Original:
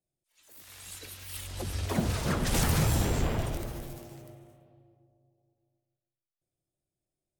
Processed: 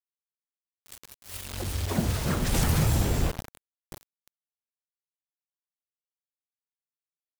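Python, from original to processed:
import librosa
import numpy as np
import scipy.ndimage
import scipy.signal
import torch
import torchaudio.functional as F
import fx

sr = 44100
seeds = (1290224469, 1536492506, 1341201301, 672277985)

y = fx.power_curve(x, sr, exponent=3.0, at=(3.31, 3.92))
y = fx.quant_dither(y, sr, seeds[0], bits=6, dither='none')
y = fx.low_shelf(y, sr, hz=220.0, db=3.5)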